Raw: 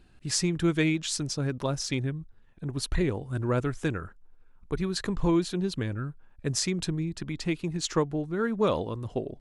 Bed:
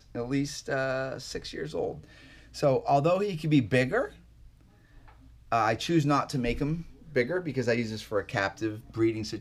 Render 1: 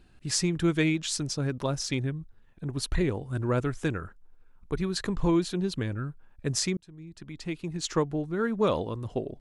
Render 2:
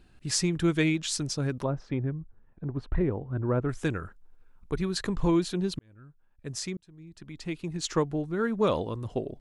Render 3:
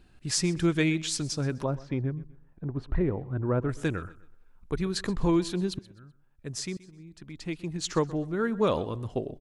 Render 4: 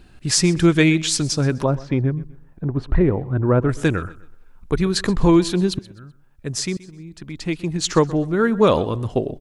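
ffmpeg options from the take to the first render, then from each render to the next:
-filter_complex "[0:a]asplit=2[a][b];[a]atrim=end=6.77,asetpts=PTS-STARTPTS,afade=t=out:st=6.766:d=0.004:c=hsin[c];[b]atrim=start=6.77,asetpts=PTS-STARTPTS,afade=t=in:d=1.29[d];[c][d]concat=n=2:v=0:a=1"
-filter_complex "[0:a]asettb=1/sr,asplit=3[a][b][c];[a]atrim=end=1.644[d];[b]atrim=start=1.64:end=3.69,asetpts=PTS-STARTPTS,afade=t=in:d=0.004:c=qsin,afade=t=out:st=2.046:d=0.004:c=qsin,lowpass=1.3k[e];[c]atrim=start=3.686[f];[d][e]acrossfade=d=0.004:c1=hsin:c2=qsin[g];[g][f]acrossfade=d=0.004:c1=qsin:c2=hsin,asplit=2[h][i];[h]atrim=end=5.79,asetpts=PTS-STARTPTS,afade=t=out:st=5.786:d=0.004:c=hsin[j];[i]atrim=start=5.79,asetpts=PTS-STARTPTS,afade=t=in:d=1.79[k];[j][k]concat=n=2:v=0:a=1"
-af "aecho=1:1:126|252|378:0.106|0.035|0.0115"
-af "volume=10dB,alimiter=limit=-3dB:level=0:latency=1"

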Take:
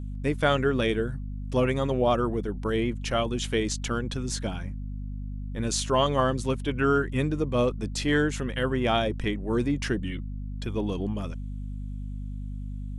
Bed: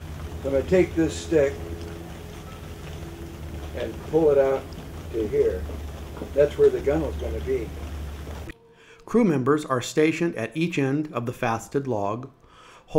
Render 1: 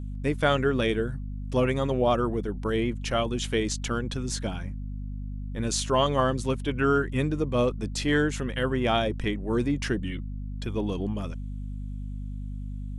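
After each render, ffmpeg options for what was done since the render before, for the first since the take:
-af anull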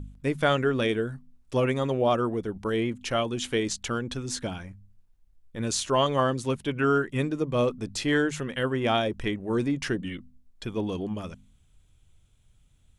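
-af "bandreject=f=50:t=h:w=4,bandreject=f=100:t=h:w=4,bandreject=f=150:t=h:w=4,bandreject=f=200:t=h:w=4,bandreject=f=250:t=h:w=4"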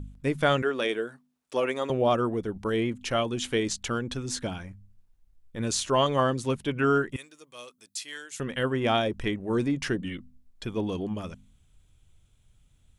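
-filter_complex "[0:a]asettb=1/sr,asplit=3[a][b][c];[a]atrim=end=0.624[d];[b]atrim=start=0.62:end=1.9,asetpts=PTS-STARTPTS,afade=t=in:d=0.004:c=qsin,afade=t=out:st=1.276:d=0.004:c=qsin,highpass=370[e];[c]atrim=start=1.896[f];[d][e]acrossfade=d=0.004:c1=hsin:c2=qsin[g];[g][f]acrossfade=d=0.004:c1=qsin:c2=hsin,asettb=1/sr,asplit=3[h][i][j];[h]atrim=end=7.164[k];[i]atrim=start=7.16:end=8.4,asetpts=PTS-STARTPTS,afade=t=in:d=0.004:c=qsin,afade=t=out:st=1.236:d=0.004:c=qsin,aderivative[l];[j]atrim=start=8.396[m];[k][l]acrossfade=d=0.004:c1=hsin:c2=qsin[n];[n][m]acrossfade=d=0.004:c1=qsin:c2=hsin"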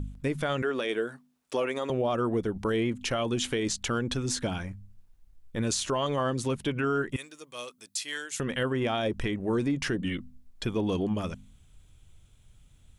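-filter_complex "[0:a]asplit=2[a][b];[b]acompressor=threshold=-32dB:ratio=6,volume=-3dB[c];[a][c]amix=inputs=2:normalize=0,alimiter=limit=-19.5dB:level=0:latency=1:release=96"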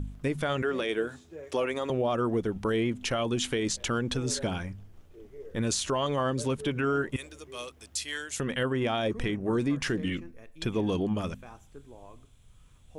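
-filter_complex "[1:a]volume=-24dB[a];[0:a][a]amix=inputs=2:normalize=0"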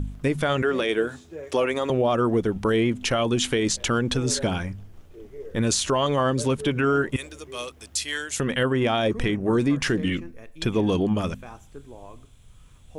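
-af "volume=6dB"

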